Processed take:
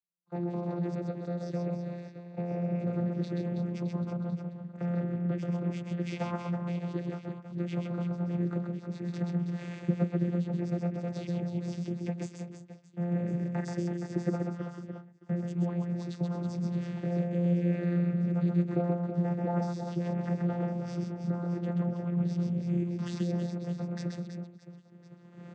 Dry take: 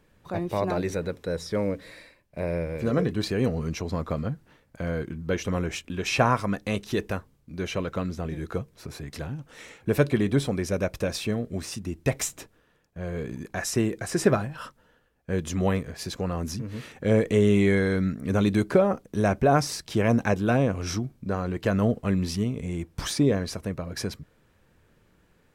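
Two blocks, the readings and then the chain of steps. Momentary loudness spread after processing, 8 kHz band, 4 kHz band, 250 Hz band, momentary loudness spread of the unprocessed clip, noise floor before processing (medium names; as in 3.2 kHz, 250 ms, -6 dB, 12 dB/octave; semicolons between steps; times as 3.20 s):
10 LU, under -20 dB, under -15 dB, -3.5 dB, 13 LU, -64 dBFS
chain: recorder AGC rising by 18 dB/s; on a send: reverse bouncing-ball echo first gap 130 ms, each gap 1.5×, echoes 5; on the sum: expander -30 dBFS; vocoder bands 16, saw 174 Hz; trim -8.5 dB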